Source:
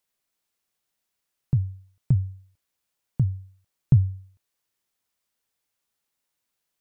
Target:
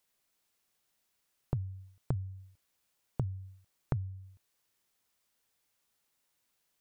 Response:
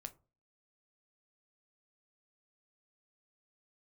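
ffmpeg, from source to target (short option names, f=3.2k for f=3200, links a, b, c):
-af "acompressor=threshold=-33dB:ratio=12,volume=2.5dB"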